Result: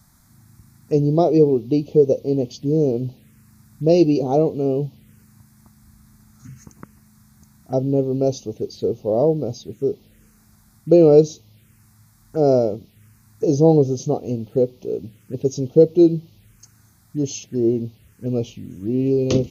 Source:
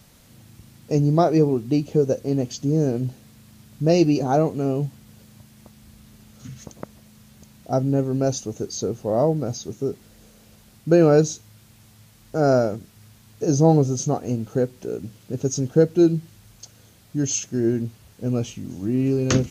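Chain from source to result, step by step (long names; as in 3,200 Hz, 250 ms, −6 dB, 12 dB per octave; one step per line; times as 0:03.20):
dynamic equaliser 440 Hz, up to +8 dB, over −33 dBFS, Q 1.6
phaser swept by the level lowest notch 470 Hz, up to 1,600 Hz, full sweep at −21.5 dBFS
level −1 dB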